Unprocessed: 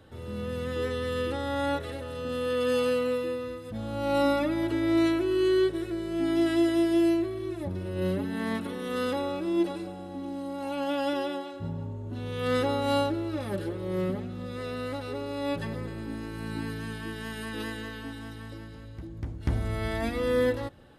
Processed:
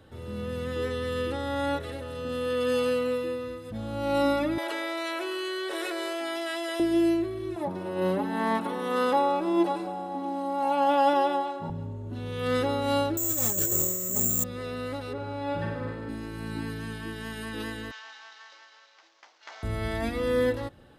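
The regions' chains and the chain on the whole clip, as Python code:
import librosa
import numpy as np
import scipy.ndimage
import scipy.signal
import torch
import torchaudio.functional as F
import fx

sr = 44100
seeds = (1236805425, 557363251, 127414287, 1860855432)

y = fx.chain(x, sr, fx.highpass(hz=530.0, slope=24),
    fx.env_flatten(amount_pct=100), at=(4.58, 6.8))
y = fx.chain(y, sr, fx.highpass(hz=140.0, slope=24),
    fx.peak_eq(hz=880.0, db=13.5, octaves=1.0), at=(7.56, 11.7))
y = fx.chain(y, sr, fx.over_compress(threshold_db=-35.0, ratio=-1.0),
    fx.resample_bad(factor=6, down='none', up='zero_stuff'), at=(13.17, 14.44))
y = fx.chain(y, sr, fx.lowpass(hz=1900.0, slope=6),
    fx.peak_eq(hz=1500.0, db=5.5, octaves=0.26),
    fx.room_flutter(wall_m=8.1, rt60_s=0.82), at=(15.13, 16.09))
y = fx.chain(y, sr, fx.cvsd(bps=32000),
    fx.highpass(hz=780.0, slope=24), at=(17.91, 19.63))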